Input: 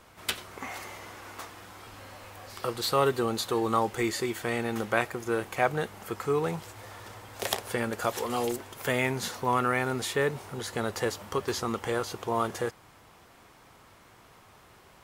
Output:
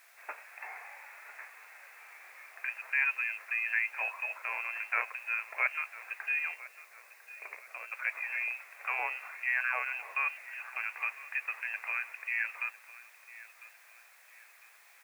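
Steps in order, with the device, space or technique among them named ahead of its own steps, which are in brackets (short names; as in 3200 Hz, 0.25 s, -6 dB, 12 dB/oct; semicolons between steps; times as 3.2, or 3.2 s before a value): scrambled radio voice (BPF 300–3100 Hz; inverted band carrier 2900 Hz; white noise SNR 26 dB); inverse Chebyshev high-pass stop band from 160 Hz, stop band 60 dB; 6.54–7.92 band shelf 1500 Hz -8.5 dB 2.3 oct; feedback echo 1.001 s, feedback 39%, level -18 dB; gain -4.5 dB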